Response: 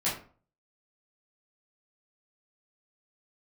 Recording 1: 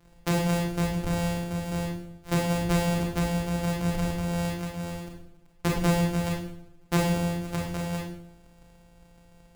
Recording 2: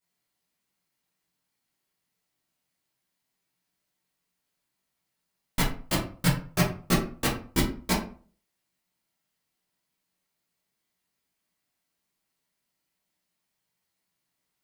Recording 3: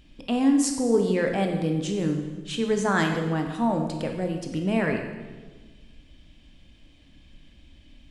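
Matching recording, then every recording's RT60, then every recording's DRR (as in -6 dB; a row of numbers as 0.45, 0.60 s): 2; 0.70, 0.45, 1.4 s; -0.5, -9.5, 3.5 dB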